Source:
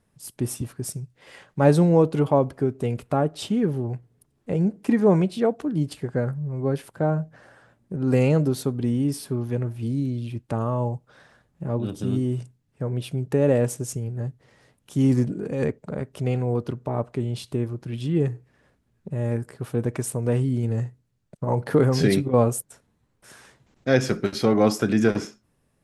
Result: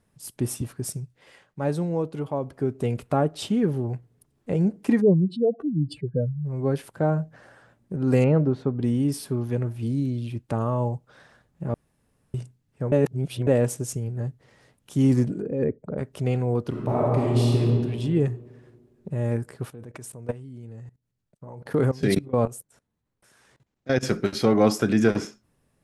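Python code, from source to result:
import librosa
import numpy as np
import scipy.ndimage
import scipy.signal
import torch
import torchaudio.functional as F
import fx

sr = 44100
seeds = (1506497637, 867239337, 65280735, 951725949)

y = fx.spec_expand(x, sr, power=2.4, at=(5.0, 6.44), fade=0.02)
y = fx.lowpass(y, sr, hz=1800.0, slope=12, at=(8.24, 8.83))
y = fx.envelope_sharpen(y, sr, power=1.5, at=(15.41, 15.97), fade=0.02)
y = fx.reverb_throw(y, sr, start_s=16.69, length_s=0.9, rt60_s=2.0, drr_db=-5.0)
y = fx.level_steps(y, sr, step_db=20, at=(19.7, 24.03))
y = fx.edit(y, sr, fx.fade_down_up(start_s=1.02, length_s=1.77, db=-9.0, fade_s=0.39),
    fx.room_tone_fill(start_s=11.74, length_s=0.6),
    fx.reverse_span(start_s=12.92, length_s=0.55), tone=tone)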